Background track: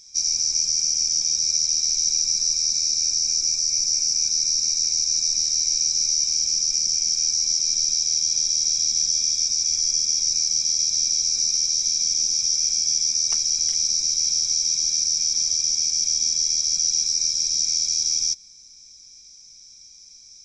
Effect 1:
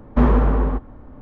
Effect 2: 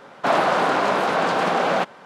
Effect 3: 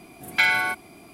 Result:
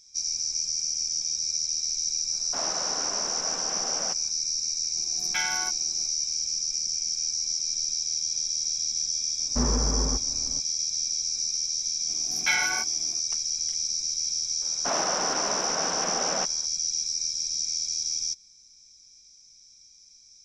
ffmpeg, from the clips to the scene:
-filter_complex "[2:a]asplit=2[s0][s1];[3:a]asplit=2[s2][s3];[0:a]volume=0.447[s4];[s2]aecho=1:1:5.6:0.73[s5];[1:a]dynaudnorm=f=120:g=3:m=3.76[s6];[s3]flanger=delay=17:depth=4:speed=2.5[s7];[s0]atrim=end=2.05,asetpts=PTS-STARTPTS,volume=0.141,afade=t=in:d=0.05,afade=t=out:st=2:d=0.05,adelay=2290[s8];[s5]atrim=end=1.12,asetpts=PTS-STARTPTS,volume=0.266,afade=t=in:d=0.004:c=hsin,afade=t=out:st=1.116:d=0.004:c=hsin,adelay=4960[s9];[s6]atrim=end=1.21,asetpts=PTS-STARTPTS,volume=0.211,afade=t=in:d=0.004:c=hsin,afade=t=out:st=1.206:d=0.004:c=hsin,adelay=9390[s10];[s7]atrim=end=1.12,asetpts=PTS-STARTPTS,volume=0.708,afade=t=in:d=0.004:c=hsin,afade=t=out:st=1.116:d=0.004:c=hsin,adelay=12080[s11];[s1]atrim=end=2.05,asetpts=PTS-STARTPTS,volume=0.299,afade=t=in:d=0.004:c=hsin,afade=t=out:st=2.046:d=0.004:c=hsin,adelay=14610[s12];[s4][s8][s9][s10][s11][s12]amix=inputs=6:normalize=0"

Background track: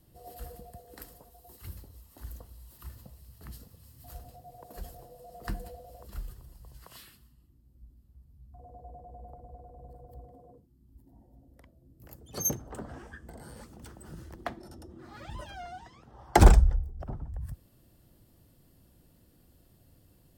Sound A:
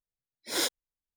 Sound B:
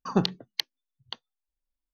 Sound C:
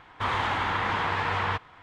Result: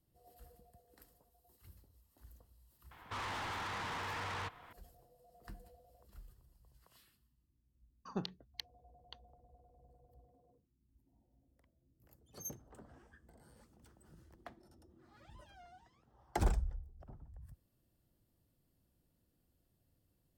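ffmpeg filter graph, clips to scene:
-filter_complex "[0:a]volume=0.158[s0];[3:a]asoftclip=type=tanh:threshold=0.0224,atrim=end=1.82,asetpts=PTS-STARTPTS,volume=0.501,afade=t=in:d=0.004:c=hsin,afade=t=out:st=1.816:d=0.004:c=hsin,adelay=2910[s1];[2:a]atrim=end=1.93,asetpts=PTS-STARTPTS,volume=0.158,afade=t=in:d=0.004:c=hsin,afade=t=out:st=1.926:d=0.004:c=hsin,adelay=8000[s2];[s0][s1][s2]amix=inputs=3:normalize=0"

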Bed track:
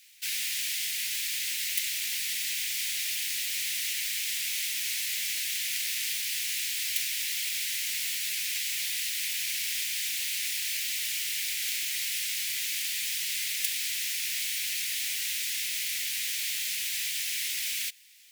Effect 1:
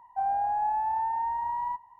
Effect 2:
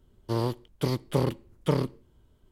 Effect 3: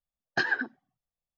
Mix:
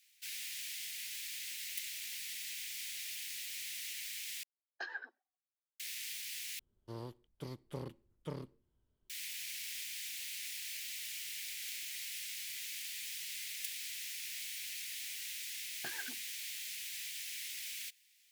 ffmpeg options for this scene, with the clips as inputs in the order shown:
-filter_complex "[3:a]asplit=2[s0][s1];[0:a]volume=0.251[s2];[s0]highpass=f=420:w=0.5412,highpass=f=420:w=1.3066[s3];[s1]alimiter=limit=0.112:level=0:latency=1:release=206[s4];[s2]asplit=3[s5][s6][s7];[s5]atrim=end=4.434[s8];[s3]atrim=end=1.37,asetpts=PTS-STARTPTS,volume=0.158[s9];[s6]atrim=start=5.796:end=6.594[s10];[2:a]atrim=end=2.51,asetpts=PTS-STARTPTS,volume=0.126[s11];[s7]atrim=start=9.096[s12];[s4]atrim=end=1.37,asetpts=PTS-STARTPTS,volume=0.168,afade=t=in:d=0.004:c=hsin,afade=t=out:st=1.366:d=0.004:c=hsin,adelay=15470[s13];[s8][s9]acrossfade=d=0.004:c1=hsin:c2=hsin[s14];[s14][s10]acrossfade=d=0.004:c1=hsin:c2=hsin[s15];[s15][s11]acrossfade=d=0.004:c1=hsin:c2=hsin[s16];[s16][s12]acrossfade=d=0.004:c1=hsin:c2=hsin[s17];[s17][s13]amix=inputs=2:normalize=0"

